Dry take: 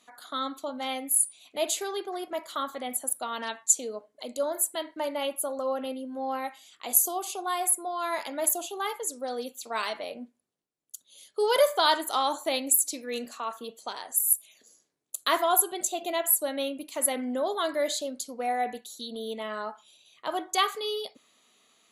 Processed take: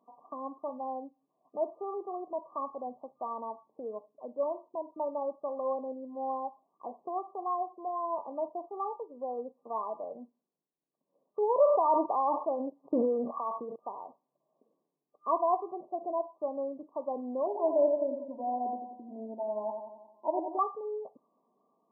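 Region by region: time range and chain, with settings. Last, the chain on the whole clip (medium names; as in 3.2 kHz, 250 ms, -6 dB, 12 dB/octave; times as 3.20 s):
11.63–13.76 s: treble shelf 6.5 kHz +6.5 dB + decay stretcher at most 25 dB/s
17.46–20.59 s: Butterworth band-stop 1.2 kHz, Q 2.4 + comb 3.2 ms, depth 89% + two-band feedback delay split 1.3 kHz, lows 89 ms, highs 194 ms, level -6 dB
whole clip: FFT band-pass 130–1200 Hz; dynamic bell 260 Hz, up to -5 dB, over -47 dBFS, Q 1.2; trim -1.5 dB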